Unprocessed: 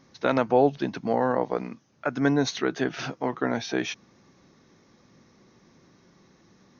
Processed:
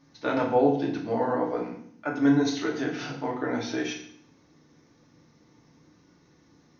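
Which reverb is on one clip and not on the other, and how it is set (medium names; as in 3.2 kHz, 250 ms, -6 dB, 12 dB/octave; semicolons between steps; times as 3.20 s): FDN reverb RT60 0.62 s, low-frequency decay 1.45×, high-frequency decay 0.95×, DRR -2.5 dB; trim -7 dB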